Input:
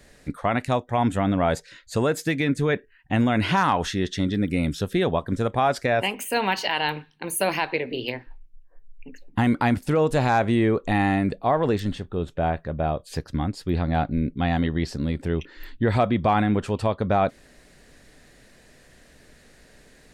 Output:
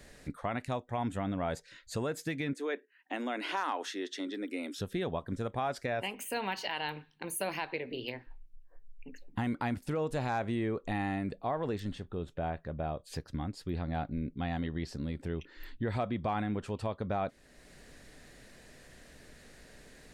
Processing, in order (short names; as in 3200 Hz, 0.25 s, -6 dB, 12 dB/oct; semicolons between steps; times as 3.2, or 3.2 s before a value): 2.53–4.79 steep high-pass 260 Hz 48 dB/oct; compressor 1.5:1, threshold -48 dBFS, peak gain reduction 11.5 dB; gain -1.5 dB